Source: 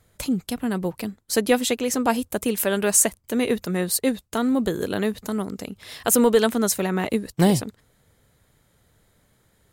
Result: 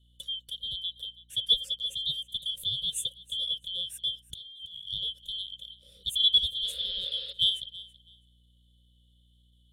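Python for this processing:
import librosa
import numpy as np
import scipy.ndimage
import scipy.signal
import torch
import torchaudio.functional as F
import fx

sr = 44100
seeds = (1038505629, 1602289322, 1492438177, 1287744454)

p1 = fx.band_shuffle(x, sr, order='2413')
p2 = fx.level_steps(p1, sr, step_db=16)
p3 = p1 + (p2 * librosa.db_to_amplitude(2.0))
p4 = fx.spec_paint(p3, sr, seeds[0], shape='noise', start_s=6.64, length_s=0.69, low_hz=400.0, high_hz=5300.0, level_db=-22.0)
p5 = fx.curve_eq(p4, sr, hz=(140.0, 320.0, 540.0, 800.0, 1600.0, 2300.0, 3500.0, 4900.0, 9700.0, 14000.0), db=(0, -15, 14, -26, -16, -21, 8, -19, -5, -14))
p6 = fx.add_hum(p5, sr, base_hz=60, snr_db=33)
p7 = fx.tone_stack(p6, sr, knobs='6-0-2')
p8 = fx.over_compress(p7, sr, threshold_db=-45.0, ratio=-1.0, at=(4.3, 4.89))
y = fx.echo_feedback(p8, sr, ms=328, feedback_pct=19, wet_db=-19.0)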